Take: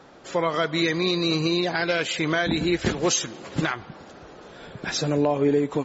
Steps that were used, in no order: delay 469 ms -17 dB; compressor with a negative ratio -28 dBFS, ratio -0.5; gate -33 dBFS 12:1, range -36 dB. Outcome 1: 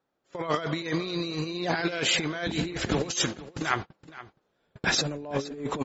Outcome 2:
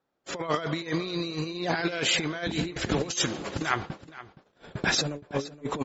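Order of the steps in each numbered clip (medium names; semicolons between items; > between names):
gate > compressor with a negative ratio > delay; compressor with a negative ratio > gate > delay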